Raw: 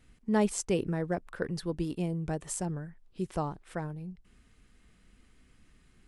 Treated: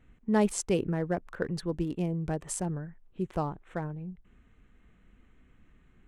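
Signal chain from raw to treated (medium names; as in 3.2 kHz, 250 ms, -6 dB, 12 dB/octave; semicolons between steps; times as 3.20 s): local Wiener filter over 9 samples; trim +1.5 dB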